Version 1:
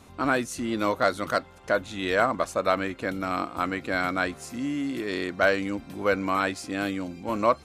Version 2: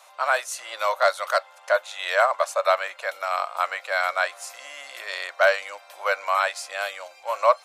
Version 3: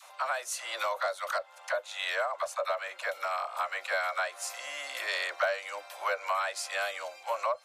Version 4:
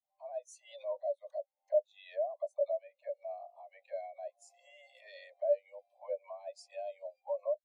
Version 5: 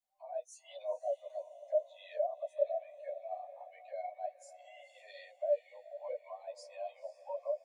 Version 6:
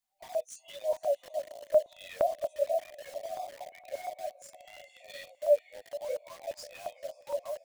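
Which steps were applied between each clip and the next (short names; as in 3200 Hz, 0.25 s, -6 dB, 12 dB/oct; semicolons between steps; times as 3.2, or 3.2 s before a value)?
Chebyshev high-pass 570 Hz, order 5; gain +4.5 dB
compressor 6:1, threshold -28 dBFS, peak gain reduction 15.5 dB; dispersion lows, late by 63 ms, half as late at 480 Hz; vocal rider 2 s
limiter -25.5 dBFS, peak gain reduction 9.5 dB; fixed phaser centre 560 Hz, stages 4; spectral expander 2.5:1; gain +5.5 dB
resonator 730 Hz, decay 0.21 s, harmonics all, mix 70%; diffused feedback echo 0.501 s, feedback 44%, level -15 dB; ensemble effect; gain +13 dB
in parallel at -5 dB: requantised 8-bit, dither none; on the sum: stepped notch 8.6 Hz 510–1800 Hz; gain +5 dB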